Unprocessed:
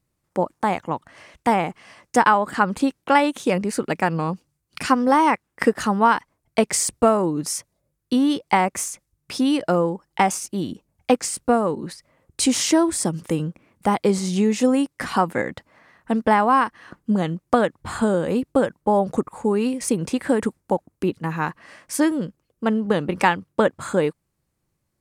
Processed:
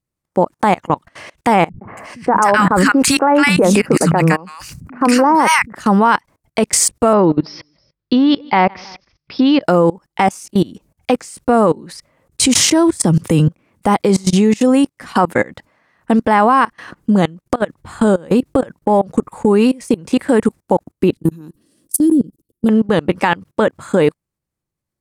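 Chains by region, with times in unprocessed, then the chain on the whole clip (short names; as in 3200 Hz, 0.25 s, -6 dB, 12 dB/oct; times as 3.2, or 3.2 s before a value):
1.69–5.75 bell 3400 Hz -9 dB 0.44 oct + three bands offset in time lows, mids, highs 0.12/0.28 s, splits 180/1500 Hz + sustainer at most 34 dB/s
7.13–9.62 steep low-pass 5300 Hz 96 dB/oct + feedback echo 0.16 s, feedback 38%, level -24 dB
12.41–13.48 bell 100 Hz +8.5 dB 1.6 oct + three-band squash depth 40%
17.42–20.05 low shelf 90 Hz +3 dB + compressor 4:1, threshold -20 dBFS
21.17–22.69 EQ curve 110 Hz 0 dB, 180 Hz +2 dB, 330 Hz +8 dB, 790 Hz -22 dB, 1400 Hz -21 dB, 2100 Hz -25 dB, 3400 Hz -6 dB, 6700 Hz -3 dB, 10000 Hz +9 dB + level quantiser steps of 23 dB
whole clip: level quantiser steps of 24 dB; maximiser +15 dB; gain -1.5 dB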